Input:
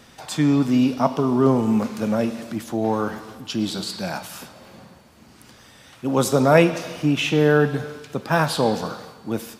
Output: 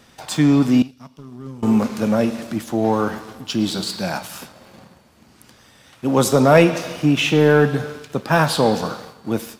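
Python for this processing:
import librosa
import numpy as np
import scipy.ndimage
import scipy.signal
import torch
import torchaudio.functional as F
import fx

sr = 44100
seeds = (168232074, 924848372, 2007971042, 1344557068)

y = fx.tone_stack(x, sr, knobs='6-0-2', at=(0.82, 1.63))
y = fx.leveller(y, sr, passes=1)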